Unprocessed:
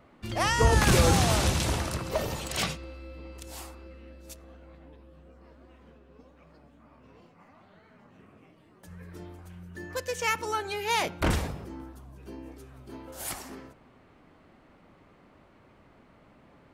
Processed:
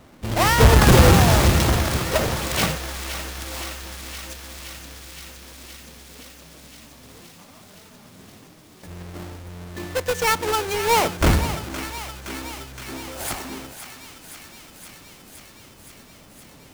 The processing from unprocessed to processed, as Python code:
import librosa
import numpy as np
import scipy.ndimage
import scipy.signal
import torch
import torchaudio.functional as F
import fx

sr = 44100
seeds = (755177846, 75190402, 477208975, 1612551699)

p1 = fx.halfwave_hold(x, sr)
p2 = p1 + fx.echo_thinned(p1, sr, ms=518, feedback_pct=81, hz=850.0, wet_db=-10, dry=0)
y = F.gain(torch.from_numpy(p2), 3.5).numpy()